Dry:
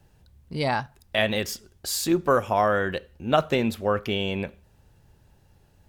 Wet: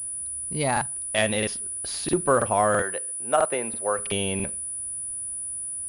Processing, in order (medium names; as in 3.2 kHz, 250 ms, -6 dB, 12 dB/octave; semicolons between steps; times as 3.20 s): 2.82–3.99 s: three-band isolator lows -17 dB, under 400 Hz, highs -13 dB, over 2.3 kHz; crackling interface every 0.33 s, samples 2048, repeat, from 0.39 s; class-D stage that switches slowly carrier 9.8 kHz